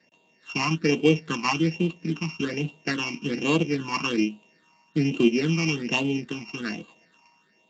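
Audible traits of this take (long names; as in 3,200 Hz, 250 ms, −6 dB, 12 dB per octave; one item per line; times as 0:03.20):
a buzz of ramps at a fixed pitch in blocks of 16 samples
phaser sweep stages 8, 1.2 Hz, lowest notch 480–1,700 Hz
Speex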